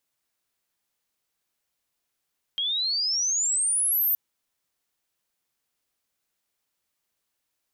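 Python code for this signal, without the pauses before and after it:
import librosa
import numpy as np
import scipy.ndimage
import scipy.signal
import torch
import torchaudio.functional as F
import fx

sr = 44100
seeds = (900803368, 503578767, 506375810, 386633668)

y = fx.chirp(sr, length_s=1.57, from_hz=3200.0, to_hz=14000.0, law='logarithmic', from_db=-24.0, to_db=-20.0)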